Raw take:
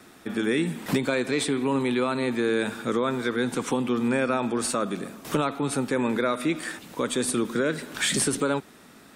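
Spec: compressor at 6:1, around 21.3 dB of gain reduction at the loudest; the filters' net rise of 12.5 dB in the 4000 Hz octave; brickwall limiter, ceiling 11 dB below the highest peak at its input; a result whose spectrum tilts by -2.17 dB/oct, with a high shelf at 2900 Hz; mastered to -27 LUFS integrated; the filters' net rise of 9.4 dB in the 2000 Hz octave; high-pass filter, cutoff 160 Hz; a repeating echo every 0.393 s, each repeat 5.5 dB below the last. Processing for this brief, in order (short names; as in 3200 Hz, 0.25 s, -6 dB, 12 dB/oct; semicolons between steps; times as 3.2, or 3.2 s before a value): HPF 160 Hz; bell 2000 Hz +7.5 dB; high shelf 2900 Hz +7 dB; bell 4000 Hz +7.5 dB; compressor 6:1, threshold -35 dBFS; limiter -28.5 dBFS; feedback echo 0.393 s, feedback 53%, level -5.5 dB; gain +10.5 dB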